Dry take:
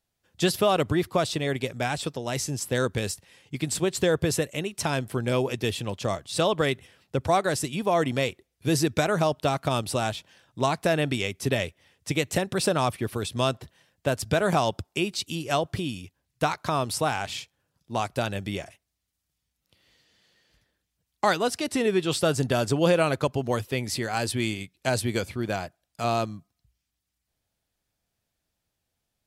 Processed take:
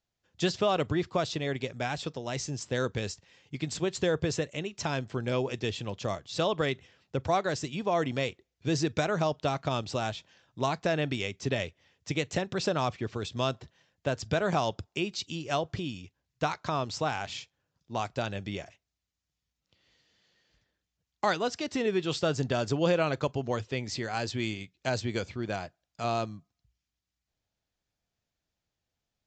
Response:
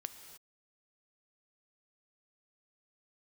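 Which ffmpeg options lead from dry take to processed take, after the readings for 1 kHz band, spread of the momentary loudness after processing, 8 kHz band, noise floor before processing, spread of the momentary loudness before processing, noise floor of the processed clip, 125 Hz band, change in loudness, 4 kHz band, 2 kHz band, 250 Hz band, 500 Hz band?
-4.5 dB, 9 LU, -8.5 dB, -81 dBFS, 9 LU, under -85 dBFS, -4.5 dB, -4.5 dB, -4.5 dB, -4.5 dB, -4.5 dB, -4.5 dB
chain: -filter_complex "[0:a]asplit=2[s0][s1];[1:a]atrim=start_sample=2205,atrim=end_sample=3969,asetrate=79380,aresample=44100[s2];[s1][s2]afir=irnorm=-1:irlink=0,volume=1.06[s3];[s0][s3]amix=inputs=2:normalize=0,aresample=16000,aresample=44100,volume=0.422"

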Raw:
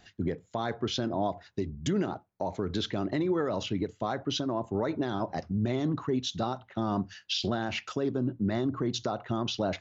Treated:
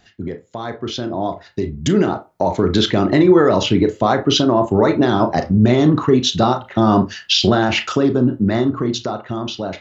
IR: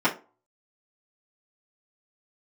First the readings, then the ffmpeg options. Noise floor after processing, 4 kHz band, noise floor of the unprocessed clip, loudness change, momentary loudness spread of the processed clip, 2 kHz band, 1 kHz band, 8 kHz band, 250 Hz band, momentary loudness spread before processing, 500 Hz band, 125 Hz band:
-50 dBFS, +14.5 dB, -63 dBFS, +15.0 dB, 13 LU, +14.5 dB, +14.5 dB, no reading, +15.0 dB, 5 LU, +15.0 dB, +14.0 dB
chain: -filter_complex "[0:a]dynaudnorm=f=400:g=9:m=3.98,asplit=2[s0][s1];[1:a]atrim=start_sample=2205,asetrate=61740,aresample=44100,adelay=30[s2];[s1][s2]afir=irnorm=-1:irlink=0,volume=0.0944[s3];[s0][s3]amix=inputs=2:normalize=0,volume=1.5"

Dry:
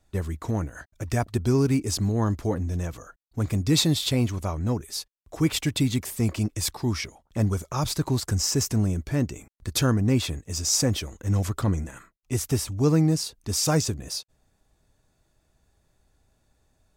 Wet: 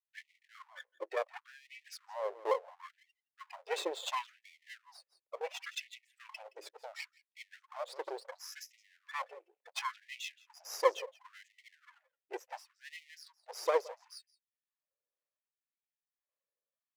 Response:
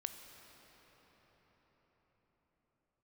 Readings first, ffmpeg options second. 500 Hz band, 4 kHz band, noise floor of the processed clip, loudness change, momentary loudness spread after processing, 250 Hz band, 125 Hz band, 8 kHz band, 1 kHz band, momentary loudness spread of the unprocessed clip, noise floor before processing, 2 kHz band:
-7.5 dB, -16.0 dB, under -85 dBFS, -14.0 dB, 21 LU, -33.5 dB, under -40 dB, -22.0 dB, -4.0 dB, 10 LU, -70 dBFS, -7.0 dB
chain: -filter_complex "[0:a]afftdn=nr=23:nf=-32,equalizer=f=10000:w=1.4:g=-13,acrossover=split=370[s0][s1];[s0]alimiter=limit=0.0668:level=0:latency=1:release=137[s2];[s2][s1]amix=inputs=2:normalize=0,asplit=3[s3][s4][s5];[s3]bandpass=f=530:t=q:w=8,volume=1[s6];[s4]bandpass=f=1840:t=q:w=8,volume=0.501[s7];[s5]bandpass=f=2480:t=q:w=8,volume=0.355[s8];[s6][s7][s8]amix=inputs=3:normalize=0,asplit=2[s9][s10];[s10]aecho=0:1:170:0.112[s11];[s9][s11]amix=inputs=2:normalize=0,aeval=exprs='max(val(0),0)':c=same,acrossover=split=590[s12][s13];[s12]aeval=exprs='val(0)*(1-0.5/2+0.5/2*cos(2*PI*1.8*n/s))':c=same[s14];[s13]aeval=exprs='val(0)*(1-0.5/2-0.5/2*cos(2*PI*1.8*n/s))':c=same[s15];[s14][s15]amix=inputs=2:normalize=0,afftfilt=real='re*gte(b*sr/1024,330*pow(1900/330,0.5+0.5*sin(2*PI*0.71*pts/sr)))':imag='im*gte(b*sr/1024,330*pow(1900/330,0.5+0.5*sin(2*PI*0.71*pts/sr)))':win_size=1024:overlap=0.75,volume=5.01"

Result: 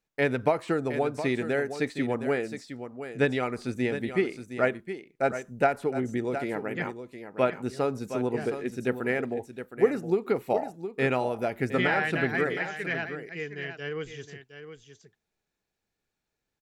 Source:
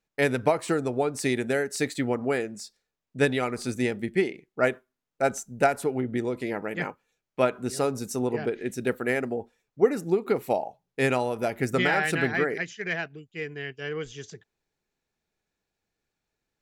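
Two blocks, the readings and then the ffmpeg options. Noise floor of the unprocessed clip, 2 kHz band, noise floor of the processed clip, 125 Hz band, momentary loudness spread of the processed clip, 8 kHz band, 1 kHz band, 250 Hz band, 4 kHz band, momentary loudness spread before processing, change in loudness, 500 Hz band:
under -85 dBFS, -1.5 dB, -84 dBFS, -1.0 dB, 12 LU, under -10 dB, -1.0 dB, -1.0 dB, -3.5 dB, 11 LU, -1.5 dB, -1.0 dB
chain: -filter_complex "[0:a]aecho=1:1:715:0.299,acrossover=split=4000[s0][s1];[s1]acompressor=threshold=0.00251:ratio=4:attack=1:release=60[s2];[s0][s2]amix=inputs=2:normalize=0,volume=0.841"

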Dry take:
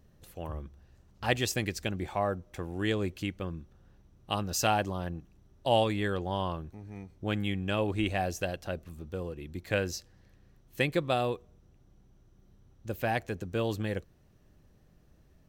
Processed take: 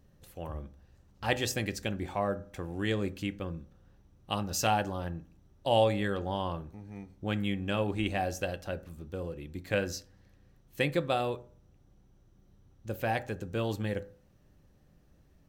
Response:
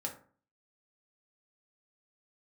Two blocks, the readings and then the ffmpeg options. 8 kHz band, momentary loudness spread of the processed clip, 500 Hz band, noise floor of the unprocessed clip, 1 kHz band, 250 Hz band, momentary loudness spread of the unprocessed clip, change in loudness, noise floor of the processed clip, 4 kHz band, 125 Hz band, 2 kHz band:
-1.0 dB, 14 LU, 0.0 dB, -62 dBFS, -0.5 dB, -0.5 dB, 14 LU, -0.5 dB, -63 dBFS, -1.0 dB, -1.0 dB, -1.0 dB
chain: -filter_complex "[0:a]asplit=2[s0][s1];[1:a]atrim=start_sample=2205[s2];[s1][s2]afir=irnorm=-1:irlink=0,volume=0.501[s3];[s0][s3]amix=inputs=2:normalize=0,volume=0.631"

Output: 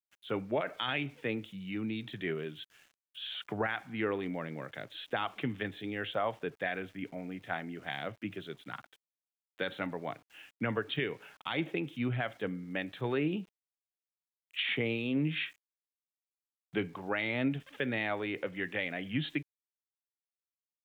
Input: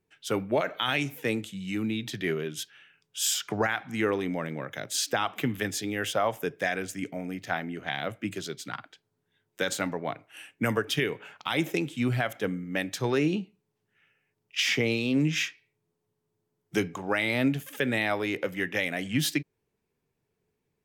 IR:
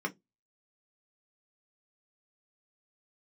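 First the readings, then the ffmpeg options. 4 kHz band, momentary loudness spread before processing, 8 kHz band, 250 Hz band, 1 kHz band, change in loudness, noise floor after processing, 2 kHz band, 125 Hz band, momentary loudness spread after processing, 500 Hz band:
-7.5 dB, 9 LU, under -30 dB, -6.0 dB, -6.0 dB, -6.5 dB, under -85 dBFS, -6.0 dB, -6.0 dB, 11 LU, -6.0 dB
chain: -af "aresample=8000,aresample=44100,aeval=exprs='val(0)*gte(abs(val(0)),0.00224)':c=same,volume=0.501"

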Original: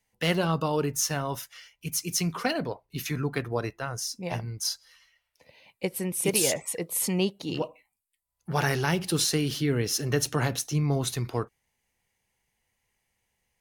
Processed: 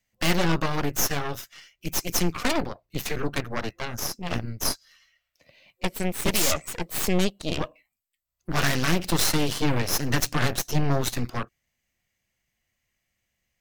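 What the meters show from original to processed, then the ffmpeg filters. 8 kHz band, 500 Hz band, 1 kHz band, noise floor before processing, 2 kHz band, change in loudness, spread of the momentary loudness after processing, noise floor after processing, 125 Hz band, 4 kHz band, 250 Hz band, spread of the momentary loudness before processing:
0.0 dB, -0.5 dB, +3.0 dB, -80 dBFS, +4.0 dB, +1.5 dB, 11 LU, -80 dBFS, +0.5 dB, +2.5 dB, +2.0 dB, 9 LU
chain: -af "superequalizer=7b=0.447:9b=0.316:16b=0.398,aeval=exprs='0.237*(cos(1*acos(clip(val(0)/0.237,-1,1)))-cos(1*PI/2))+0.075*(cos(8*acos(clip(val(0)/0.237,-1,1)))-cos(8*PI/2))':c=same"

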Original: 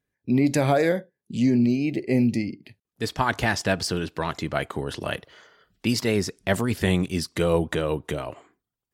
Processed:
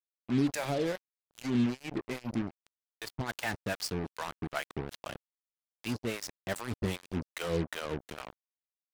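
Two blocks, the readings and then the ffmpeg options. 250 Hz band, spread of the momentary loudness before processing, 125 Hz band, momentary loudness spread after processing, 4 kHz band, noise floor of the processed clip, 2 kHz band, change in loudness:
-10.5 dB, 11 LU, -11.0 dB, 13 LU, -9.5 dB, under -85 dBFS, -10.0 dB, -10.5 dB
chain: -filter_complex "[0:a]acrossover=split=570[s0][s1];[s0]aeval=exprs='val(0)*(1-1/2+1/2*cos(2*PI*2.5*n/s))':c=same[s2];[s1]aeval=exprs='val(0)*(1-1/2-1/2*cos(2*PI*2.5*n/s))':c=same[s3];[s2][s3]amix=inputs=2:normalize=0,acrusher=bits=4:mix=0:aa=0.5,volume=0.501"

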